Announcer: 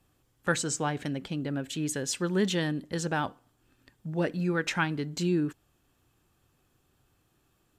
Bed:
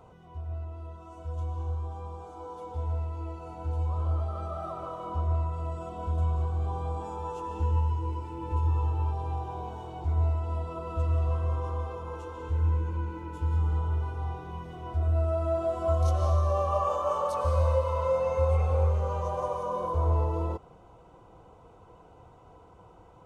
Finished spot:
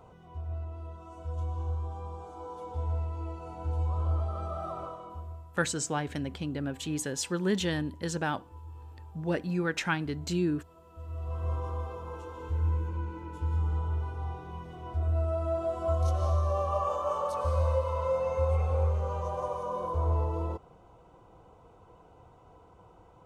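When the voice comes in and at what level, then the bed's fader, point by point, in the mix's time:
5.10 s, -1.5 dB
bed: 4.81 s -0.5 dB
5.47 s -19.5 dB
10.88 s -19.5 dB
11.49 s -2.5 dB

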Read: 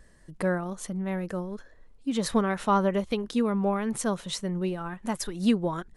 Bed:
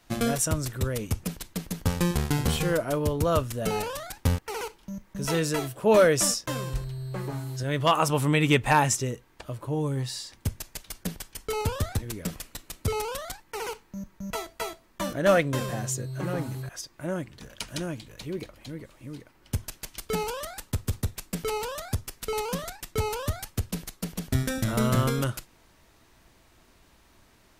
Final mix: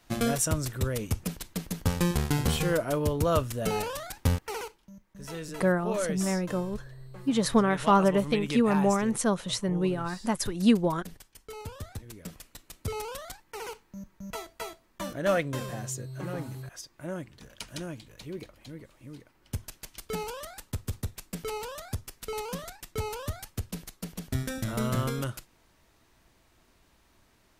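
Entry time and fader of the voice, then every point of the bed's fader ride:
5.20 s, +2.0 dB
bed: 4.54 s -1 dB
4.90 s -12.5 dB
11.71 s -12.5 dB
13.05 s -5 dB

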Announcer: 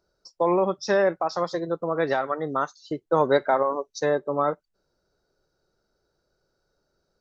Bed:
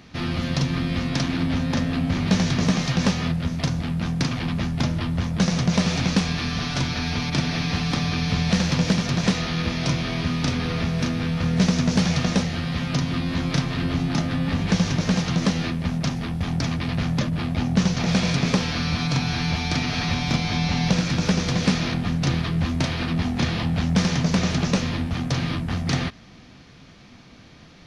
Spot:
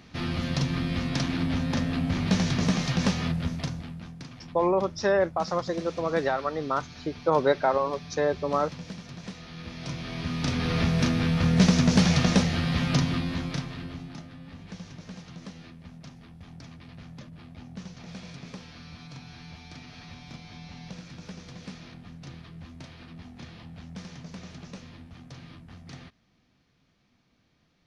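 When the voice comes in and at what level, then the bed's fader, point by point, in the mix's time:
4.15 s, -2.0 dB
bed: 3.47 s -4 dB
4.19 s -19 dB
9.38 s -19 dB
10.80 s 0 dB
12.98 s 0 dB
14.34 s -21 dB

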